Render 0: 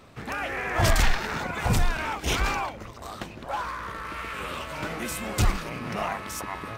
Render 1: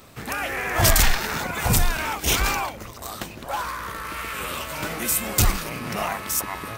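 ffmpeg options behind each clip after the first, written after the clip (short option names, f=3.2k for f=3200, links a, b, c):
-af "aemphasis=mode=production:type=50fm,volume=2.5dB"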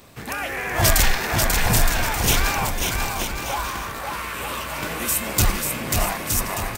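-filter_complex "[0:a]bandreject=f=1.3k:w=17,asplit=2[a][b];[b]aecho=0:1:540|918|1183|1368|1497:0.631|0.398|0.251|0.158|0.1[c];[a][c]amix=inputs=2:normalize=0"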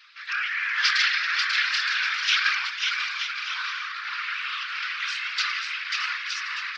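-af "afftfilt=real='hypot(re,im)*cos(2*PI*random(0))':imag='hypot(re,im)*sin(2*PI*random(1))':win_size=512:overlap=0.75,asuperpass=centerf=2600:order=12:qfactor=0.67,volume=8.5dB"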